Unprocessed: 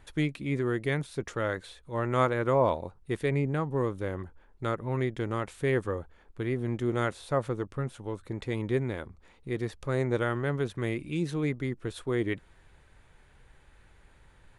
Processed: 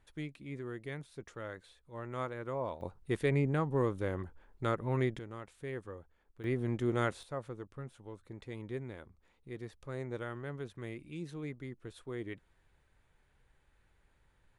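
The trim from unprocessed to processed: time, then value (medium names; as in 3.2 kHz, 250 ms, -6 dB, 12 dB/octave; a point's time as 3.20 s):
-13 dB
from 2.81 s -2 dB
from 5.19 s -14 dB
from 6.44 s -3 dB
from 7.23 s -12 dB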